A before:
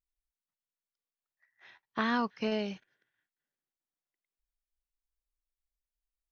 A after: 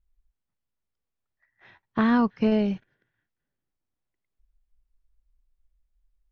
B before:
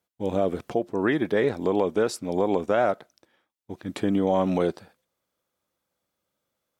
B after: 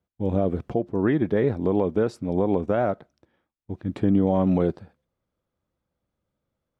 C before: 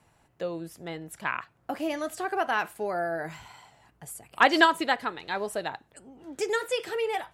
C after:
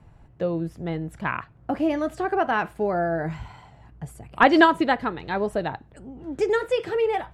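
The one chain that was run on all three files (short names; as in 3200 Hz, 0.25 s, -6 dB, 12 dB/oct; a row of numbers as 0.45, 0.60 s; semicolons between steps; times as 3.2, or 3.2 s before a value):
RIAA curve playback; match loudness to -24 LUFS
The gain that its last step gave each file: +4.5, -3.0, +3.5 dB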